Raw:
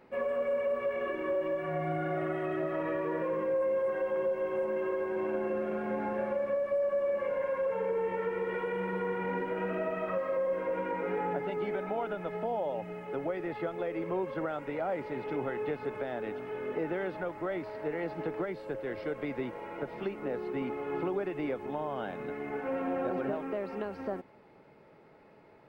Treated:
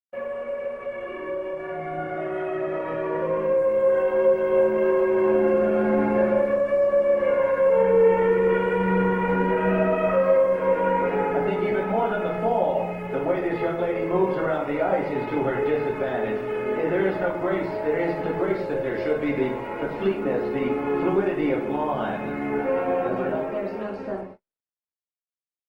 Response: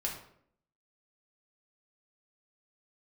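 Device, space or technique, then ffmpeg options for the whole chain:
speakerphone in a meeting room: -filter_complex "[1:a]atrim=start_sample=2205[link_01];[0:a][link_01]afir=irnorm=-1:irlink=0,asplit=2[link_02][link_03];[link_03]adelay=360,highpass=300,lowpass=3400,asoftclip=type=hard:threshold=-26dB,volume=-28dB[link_04];[link_02][link_04]amix=inputs=2:normalize=0,dynaudnorm=framelen=530:gausssize=13:maxgain=8.5dB,agate=range=-50dB:threshold=-39dB:ratio=16:detection=peak,volume=-1dB" -ar 48000 -c:a libopus -b:a 20k

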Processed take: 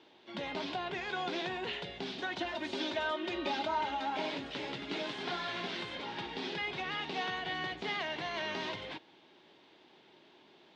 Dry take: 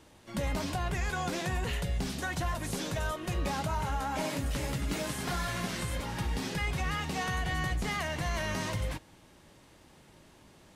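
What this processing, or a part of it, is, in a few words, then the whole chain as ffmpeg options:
phone earpiece: -filter_complex "[0:a]asettb=1/sr,asplit=3[link_01][link_02][link_03];[link_01]atrim=end=2.384[link_04];[link_02]atrim=start=2.38:end=4.1,asetpts=PTS-STARTPTS,afade=type=in:duration=0.004:curve=qsin,afade=type=out:start_time=1.716:duration=0.004:curve=qsin,aecho=1:1:3.3:0.84,atrim=end_sample=75852[link_05];[link_03]atrim=start=4.096[link_06];[link_04][link_05]acrossfade=duration=0.004:curve1=hsin:curve2=qsin[link_07];[link_07][link_06]acrossfade=duration=0.004:curve1=qsin:curve2=hsin,highpass=340,equalizer=frequency=380:width_type=q:width=4:gain=5,equalizer=frequency=540:width_type=q:width=4:gain=-6,equalizer=frequency=1200:width_type=q:width=4:gain=-6,equalizer=frequency=1800:width_type=q:width=4:gain=-3,equalizer=frequency=3500:width_type=q:width=4:gain=5,lowpass=frequency=4200:width=0.5412,lowpass=frequency=4200:width=1.3066"

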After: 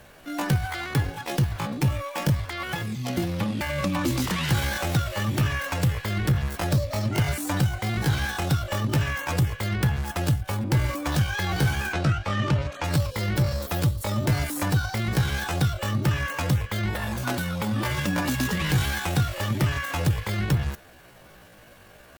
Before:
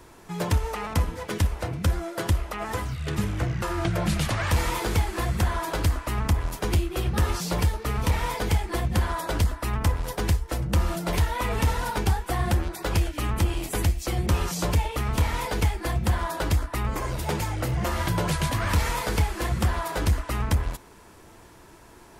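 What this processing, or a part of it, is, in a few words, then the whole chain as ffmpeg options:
chipmunk voice: -filter_complex "[0:a]asetrate=74167,aresample=44100,atempo=0.594604,asplit=3[link_01][link_02][link_03];[link_01]afade=type=out:start_time=11.92:duration=0.02[link_04];[link_02]lowpass=5500,afade=type=in:start_time=11.92:duration=0.02,afade=type=out:start_time=12.83:duration=0.02[link_05];[link_03]afade=type=in:start_time=12.83:duration=0.02[link_06];[link_04][link_05][link_06]amix=inputs=3:normalize=0"

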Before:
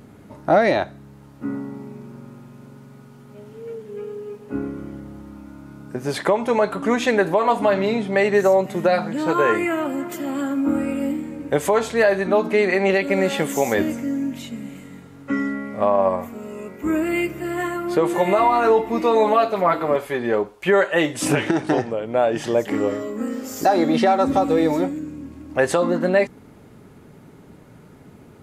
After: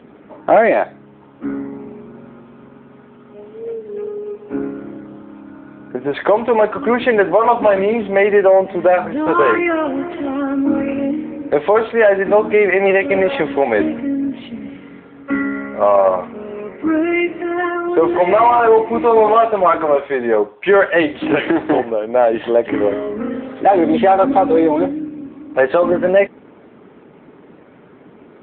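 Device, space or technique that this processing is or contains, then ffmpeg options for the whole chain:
telephone: -af "highpass=280,lowpass=3500,asoftclip=type=tanh:threshold=-9dB,volume=7.5dB" -ar 8000 -c:a libopencore_amrnb -b:a 7950

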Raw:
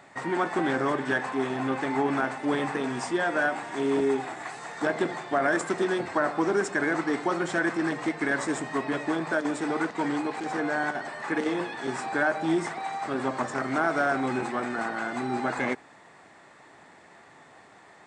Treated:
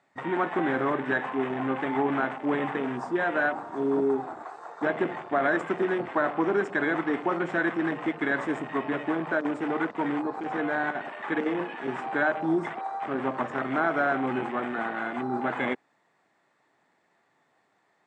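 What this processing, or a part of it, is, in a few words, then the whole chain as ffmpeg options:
over-cleaned archive recording: -af "highpass=110,lowpass=8000,afwtdn=0.0178"

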